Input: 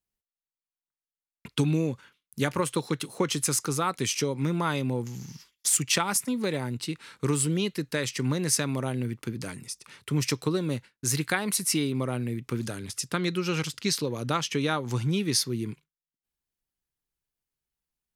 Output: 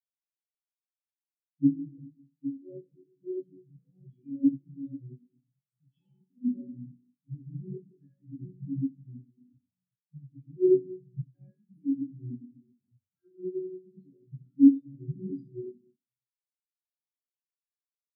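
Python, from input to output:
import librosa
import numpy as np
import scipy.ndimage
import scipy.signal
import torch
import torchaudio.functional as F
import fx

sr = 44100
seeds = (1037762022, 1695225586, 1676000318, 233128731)

y = fx.diode_clip(x, sr, knee_db=-12.0)
y = fx.peak_eq(y, sr, hz=210.0, db=5.0, octaves=0.53)
y = fx.resonator_bank(y, sr, root=42, chord='sus4', decay_s=0.56)
y = fx.env_phaser(y, sr, low_hz=200.0, high_hz=1300.0, full_db=-39.5)
y = scipy.signal.sosfilt(scipy.signal.butter(2, 120.0, 'highpass', fs=sr, output='sos'), y)
y = fx.room_shoebox(y, sr, seeds[0], volume_m3=830.0, walls='mixed', distance_m=8.3)
y = fx.spectral_expand(y, sr, expansion=4.0)
y = y * librosa.db_to_amplitude(7.0)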